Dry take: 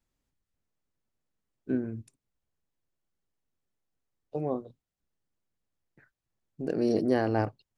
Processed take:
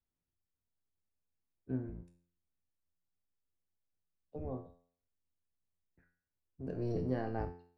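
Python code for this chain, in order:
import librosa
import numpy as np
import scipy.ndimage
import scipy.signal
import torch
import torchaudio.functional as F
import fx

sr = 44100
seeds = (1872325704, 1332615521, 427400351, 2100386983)

y = fx.octave_divider(x, sr, octaves=1, level_db=3.0)
y = fx.high_shelf(y, sr, hz=3900.0, db=-11.0)
y = fx.comb_fb(y, sr, f0_hz=87.0, decay_s=0.51, harmonics='all', damping=0.0, mix_pct=80)
y = F.gain(torch.from_numpy(y), -2.5).numpy()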